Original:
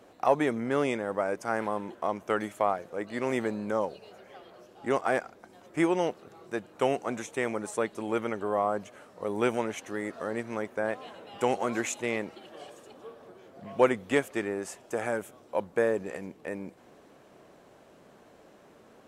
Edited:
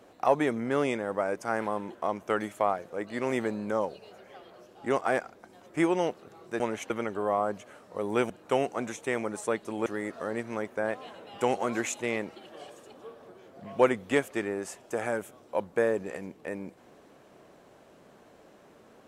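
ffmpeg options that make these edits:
-filter_complex "[0:a]asplit=5[s0][s1][s2][s3][s4];[s0]atrim=end=6.602[s5];[s1]atrim=start=9.558:end=9.862[s6];[s2]atrim=start=8.158:end=9.562[s7];[s3]atrim=start=6.598:end=8.162[s8];[s4]atrim=start=9.858[s9];[s5][s6]acrossfade=d=0.004:c1=hsin:c2=hsin[s10];[s10][s7]acrossfade=d=0.004:c1=hsin:c2=hsin[s11];[s11][s8]acrossfade=d=0.004:c1=hsin:c2=hsin[s12];[s12][s9]acrossfade=d=0.004:c1=hsin:c2=hsin"

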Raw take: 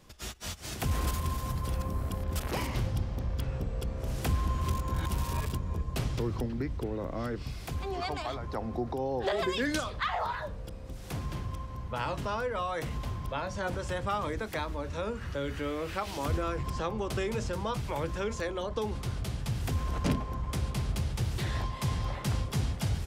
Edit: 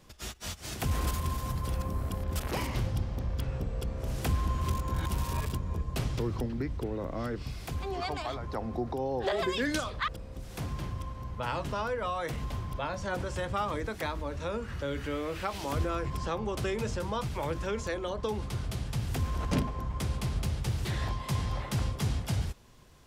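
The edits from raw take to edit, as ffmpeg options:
-filter_complex "[0:a]asplit=2[s0][s1];[s0]atrim=end=10.082[s2];[s1]atrim=start=10.608[s3];[s2][s3]acrossfade=d=0.004:c1=hsin:c2=hsin"

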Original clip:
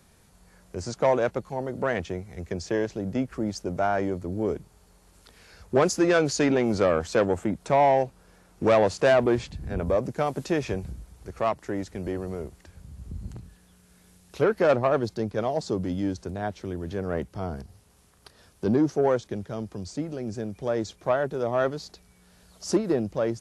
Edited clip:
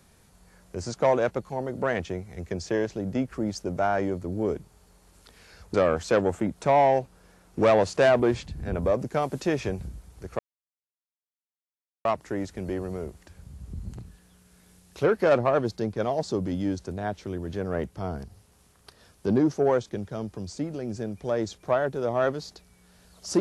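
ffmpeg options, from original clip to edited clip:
-filter_complex "[0:a]asplit=3[s0][s1][s2];[s0]atrim=end=5.742[s3];[s1]atrim=start=6.778:end=11.43,asetpts=PTS-STARTPTS,afade=t=out:st=4.648:d=0.004:c=hsin,apad=pad_dur=1.66[s4];[s2]atrim=start=11.43,asetpts=PTS-STARTPTS,afade=t=in:d=0.004:c=hsin[s5];[s4][s5]concat=n=2:v=0:a=1[s6];[s3][s6]acrossfade=d=0.004:c1=hsin:c2=hsin"

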